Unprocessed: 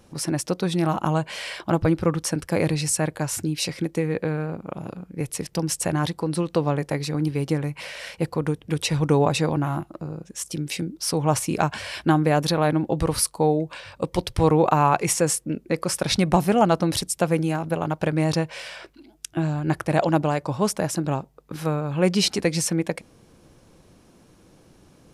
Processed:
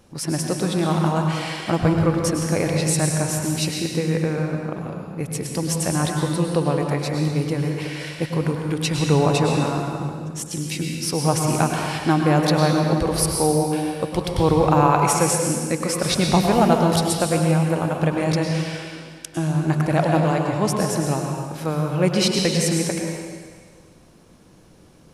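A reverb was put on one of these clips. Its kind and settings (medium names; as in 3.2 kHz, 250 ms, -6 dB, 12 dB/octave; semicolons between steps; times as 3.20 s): plate-style reverb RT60 1.7 s, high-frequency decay 1×, pre-delay 90 ms, DRR 1 dB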